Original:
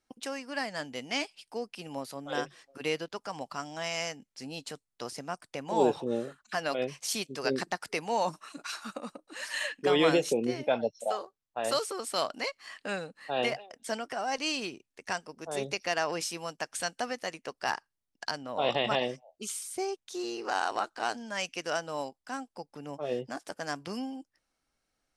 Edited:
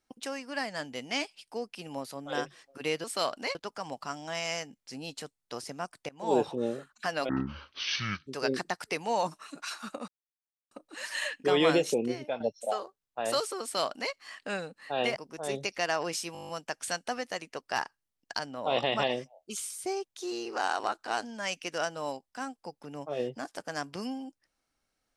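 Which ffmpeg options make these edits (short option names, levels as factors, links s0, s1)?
-filter_complex "[0:a]asplit=17[s0][s1][s2][s3][s4][s5][s6][s7][s8][s9][s10][s11][s12][s13][s14][s15][s16];[s0]atrim=end=3.042[s17];[s1]atrim=start=12.008:end=12.522[s18];[s2]atrim=start=3.038:end=5.58,asetpts=PTS-STARTPTS,afade=t=out:st=2.538:d=0.004:c=hsin:silence=0.0749894[s19];[s3]atrim=start=5.58:end=6.784,asetpts=PTS-STARTPTS,afade=t=in:d=0.3:silence=0.0749894[s20];[s4]atrim=start=6.78:end=7.29,asetpts=PTS-STARTPTS,asetrate=22932,aresample=44100[s21];[s5]atrim=start=7.286:end=9.1,asetpts=PTS-STARTPTS,afade=t=out:st=1.81:d=0.004:c=hsin,apad=pad_dur=0.63[s22];[s6]atrim=start=9.1:end=10.79,asetpts=PTS-STARTPTS,afade=t=in:d=0.004:c=hsin,afade=t=out:st=1.3:d=0.39:silence=0.334965[s23];[s7]atrim=start=10.79:end=13.552,asetpts=PTS-STARTPTS,afade=t=in:d=0.004:c=hsin:silence=0.334965[s24];[s8]atrim=start=15.238:end=16.432[s25];[s9]atrim=start=16.408:end=16.432[s26];[s10]atrim=start=16.408:end=16.432[s27];[s11]atrim=start=16.408:end=16.432[s28];[s12]atrim=start=16.408:end=16.432[s29];[s13]atrim=start=16.408:end=16.432[s30];[s14]atrim=start=16.408:end=16.432[s31];[s15]atrim=start=16.408:end=16.432[s32];[s16]atrim=start=16.408[s33];[s17][s18]acrossfade=d=0.004:c1=hsin:c2=hsin[s34];[s19][s20]concat=n=2:v=0:a=1[s35];[s34][s35]acrossfade=d=0.004:c1=hsin:c2=hsin[s36];[s36][s21]acrossfade=d=0.004:c1=hsin:c2=hsin[s37];[s22][s23][s24]concat=n=3:v=0:a=1[s38];[s37][s38]acrossfade=d=0.004:c1=hsin:c2=hsin[s39];[s39][s25]acrossfade=d=0.004:c1=hsin:c2=hsin[s40];[s40][s26]acrossfade=d=0.004:c1=hsin:c2=hsin[s41];[s41][s27]acrossfade=d=0.004:c1=hsin:c2=hsin[s42];[s42][s28]acrossfade=d=0.004:c1=hsin:c2=hsin[s43];[s43][s29]acrossfade=d=0.004:c1=hsin:c2=hsin[s44];[s44][s30]acrossfade=d=0.004:c1=hsin:c2=hsin[s45];[s45][s31]acrossfade=d=0.004:c1=hsin:c2=hsin[s46];[s46][s32]acrossfade=d=0.004:c1=hsin:c2=hsin[s47];[s47][s33]acrossfade=d=0.004:c1=hsin:c2=hsin"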